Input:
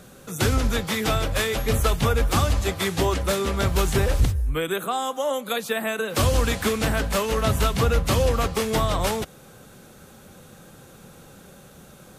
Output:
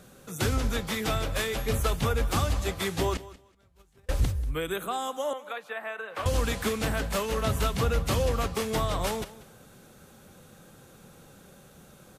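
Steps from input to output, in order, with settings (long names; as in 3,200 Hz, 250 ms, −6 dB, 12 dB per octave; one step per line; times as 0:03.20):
0:03.17–0:04.09: noise gate −14 dBFS, range −36 dB
0:05.33–0:06.26: three-way crossover with the lows and the highs turned down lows −19 dB, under 550 Hz, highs −20 dB, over 2,600 Hz
repeating echo 188 ms, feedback 19%, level −18 dB
level −5.5 dB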